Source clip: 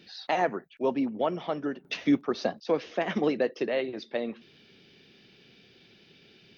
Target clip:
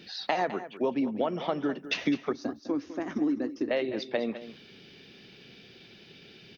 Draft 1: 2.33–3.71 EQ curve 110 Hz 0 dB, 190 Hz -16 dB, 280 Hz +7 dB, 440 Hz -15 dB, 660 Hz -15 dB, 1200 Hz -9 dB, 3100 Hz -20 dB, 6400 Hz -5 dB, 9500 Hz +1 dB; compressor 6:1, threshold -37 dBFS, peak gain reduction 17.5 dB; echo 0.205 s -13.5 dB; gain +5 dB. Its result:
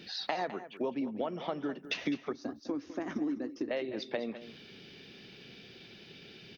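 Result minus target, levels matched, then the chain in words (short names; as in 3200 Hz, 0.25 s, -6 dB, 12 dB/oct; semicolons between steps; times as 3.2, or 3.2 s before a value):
compressor: peak gain reduction +6 dB
2.33–3.71 EQ curve 110 Hz 0 dB, 190 Hz -16 dB, 280 Hz +7 dB, 440 Hz -15 dB, 660 Hz -15 dB, 1200 Hz -9 dB, 3100 Hz -20 dB, 6400 Hz -5 dB, 9500 Hz +1 dB; compressor 6:1, threshold -29.5 dBFS, peak gain reduction 11 dB; echo 0.205 s -13.5 dB; gain +5 dB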